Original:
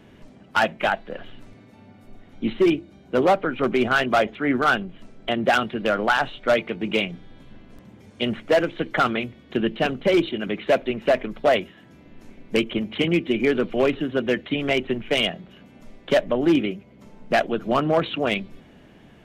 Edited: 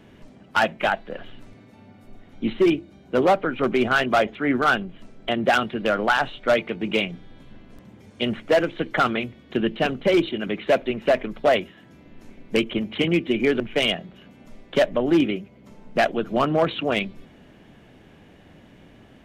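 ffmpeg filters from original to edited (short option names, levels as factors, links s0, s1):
-filter_complex "[0:a]asplit=2[s0][s1];[s0]atrim=end=13.602[s2];[s1]atrim=start=14.948[s3];[s2][s3]acrossfade=d=0.004:c1=hsin:c2=hsin"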